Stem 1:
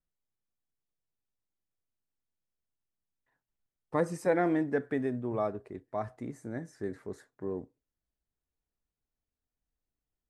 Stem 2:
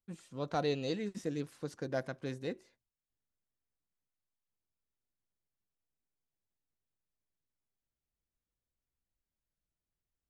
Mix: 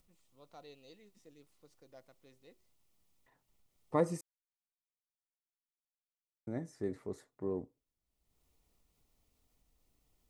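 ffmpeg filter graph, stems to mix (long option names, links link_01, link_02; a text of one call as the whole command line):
ffmpeg -i stem1.wav -i stem2.wav -filter_complex "[0:a]acompressor=mode=upward:threshold=-58dB:ratio=2.5,volume=-1dB,asplit=3[link_01][link_02][link_03];[link_01]atrim=end=4.21,asetpts=PTS-STARTPTS,afade=type=out:start_time=4.206:duration=0.004:curve=hsin[link_04];[link_02]atrim=start=4.21:end=6.47,asetpts=PTS-STARTPTS,volume=0[link_05];[link_03]atrim=start=6.47,asetpts=PTS-STARTPTS,afade=type=in:duration=0.004:curve=hsin[link_06];[link_04][link_05][link_06]concat=n=3:v=0:a=1[link_07];[1:a]lowshelf=frequency=330:gain=-11,volume=-18dB[link_08];[link_07][link_08]amix=inputs=2:normalize=0,equalizer=frequency=1600:width_type=o:width=0.22:gain=-14" out.wav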